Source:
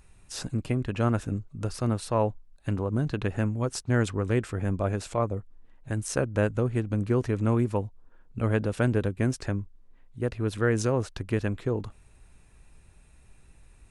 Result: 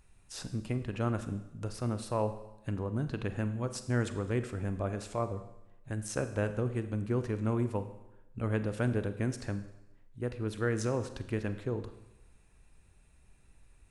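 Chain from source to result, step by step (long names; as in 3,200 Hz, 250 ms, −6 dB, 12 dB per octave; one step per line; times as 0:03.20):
four-comb reverb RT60 0.92 s, combs from 33 ms, DRR 10 dB
level −6.5 dB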